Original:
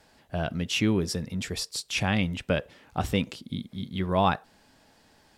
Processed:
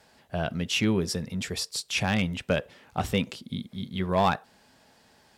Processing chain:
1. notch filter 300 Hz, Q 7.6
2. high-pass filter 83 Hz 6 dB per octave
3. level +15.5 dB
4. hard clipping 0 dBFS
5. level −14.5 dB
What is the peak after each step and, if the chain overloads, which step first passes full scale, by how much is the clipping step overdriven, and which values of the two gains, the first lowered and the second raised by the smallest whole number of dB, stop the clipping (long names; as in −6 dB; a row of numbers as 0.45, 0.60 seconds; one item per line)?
−11.5, −10.5, +5.0, 0.0, −14.5 dBFS
step 3, 5.0 dB
step 3 +10.5 dB, step 5 −9.5 dB